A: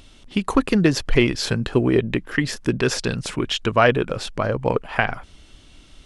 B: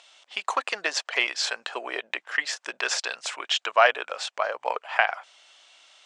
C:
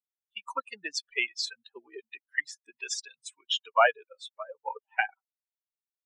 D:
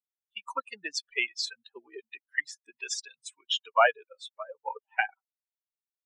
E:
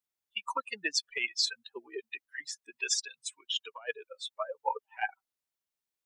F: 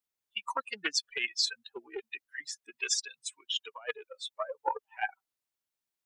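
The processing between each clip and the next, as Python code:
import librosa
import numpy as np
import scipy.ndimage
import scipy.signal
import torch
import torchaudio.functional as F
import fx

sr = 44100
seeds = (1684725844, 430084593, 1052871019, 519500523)

y1 = scipy.signal.sosfilt(scipy.signal.ellip(3, 1.0, 70, [670.0, 7800.0], 'bandpass', fs=sr, output='sos'), x)
y2 = fx.bin_expand(y1, sr, power=3.0)
y3 = y2
y4 = fx.over_compress(y3, sr, threshold_db=-30.0, ratio=-0.5)
y5 = fx.doppler_dist(y4, sr, depth_ms=0.13)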